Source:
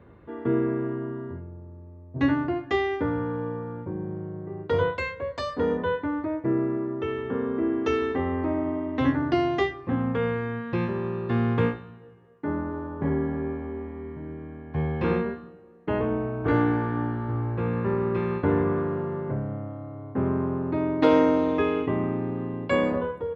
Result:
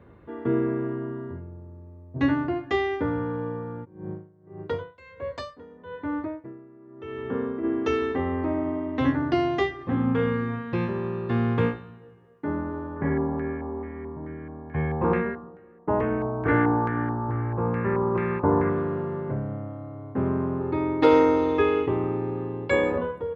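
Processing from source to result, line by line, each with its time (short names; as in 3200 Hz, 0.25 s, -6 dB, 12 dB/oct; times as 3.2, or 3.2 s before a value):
3.84–7.63 dB-linear tremolo 2.2 Hz -> 0.62 Hz, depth 23 dB
9.69–10.44 reverb throw, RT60 0.92 s, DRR 4 dB
12.96–18.7 LFO low-pass square 2.3 Hz 980–2000 Hz
20.6–22.98 comb 2.3 ms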